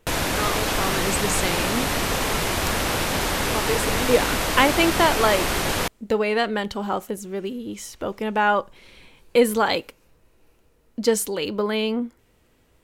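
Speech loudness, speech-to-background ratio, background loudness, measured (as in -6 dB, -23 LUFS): -24.0 LUFS, -1.0 dB, -23.0 LUFS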